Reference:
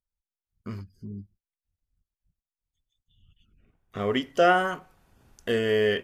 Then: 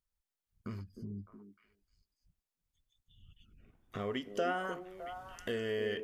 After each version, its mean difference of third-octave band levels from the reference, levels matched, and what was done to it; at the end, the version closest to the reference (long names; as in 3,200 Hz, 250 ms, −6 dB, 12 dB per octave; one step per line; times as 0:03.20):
4.0 dB: downward compressor 2 to 1, threshold −45 dBFS, peak gain reduction 16 dB
on a send: echo through a band-pass that steps 305 ms, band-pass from 330 Hz, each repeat 1.4 octaves, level −4.5 dB
on the sum: level +1 dB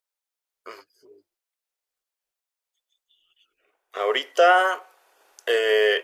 7.5 dB: inverse Chebyshev high-pass filter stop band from 220 Hz, stop band 40 dB
in parallel at +2 dB: brickwall limiter −17 dBFS, peak gain reduction 8 dB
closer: first